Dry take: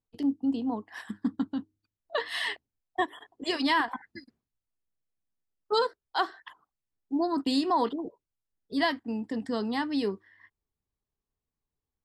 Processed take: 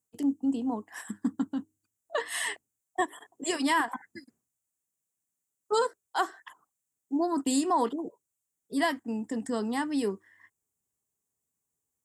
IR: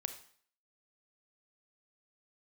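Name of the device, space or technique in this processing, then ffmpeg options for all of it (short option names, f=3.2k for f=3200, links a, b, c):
budget condenser microphone: -af "highpass=110,highshelf=f=5.7k:t=q:w=3:g=9.5"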